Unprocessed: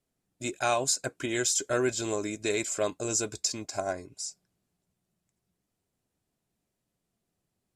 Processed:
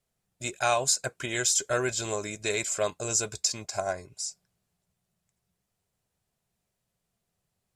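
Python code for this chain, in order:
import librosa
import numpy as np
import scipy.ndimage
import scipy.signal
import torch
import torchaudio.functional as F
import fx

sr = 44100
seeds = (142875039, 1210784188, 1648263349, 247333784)

y = fx.peak_eq(x, sr, hz=290.0, db=-12.0, octaves=0.71)
y = y * 10.0 ** (2.5 / 20.0)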